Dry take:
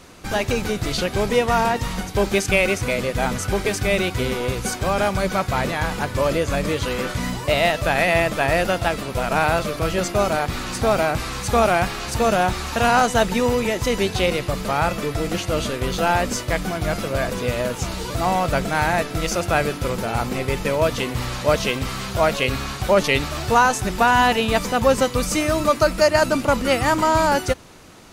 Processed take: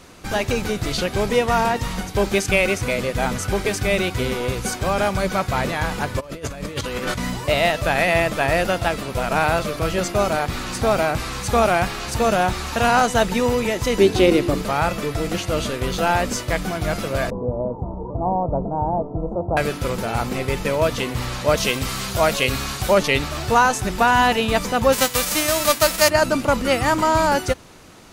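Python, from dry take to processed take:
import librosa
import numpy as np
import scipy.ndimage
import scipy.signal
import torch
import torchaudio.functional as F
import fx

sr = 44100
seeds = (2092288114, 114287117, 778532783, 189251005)

y = fx.over_compress(x, sr, threshold_db=-27.0, ratio=-0.5, at=(6.19, 7.18), fade=0.02)
y = fx.peak_eq(y, sr, hz=320.0, db=14.5, octaves=0.74, at=(13.98, 14.62))
y = fx.ellip_lowpass(y, sr, hz=940.0, order=4, stop_db=50, at=(17.3, 19.57))
y = fx.high_shelf(y, sr, hz=4600.0, db=8.0, at=(21.57, 22.98))
y = fx.envelope_flatten(y, sr, power=0.3, at=(24.92, 26.08), fade=0.02)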